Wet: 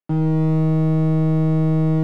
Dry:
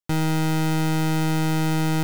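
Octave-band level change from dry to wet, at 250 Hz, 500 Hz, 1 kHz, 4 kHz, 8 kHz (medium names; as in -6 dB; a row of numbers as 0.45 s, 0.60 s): +4.5 dB, +5.0 dB, -6.0 dB, under -15 dB, under -20 dB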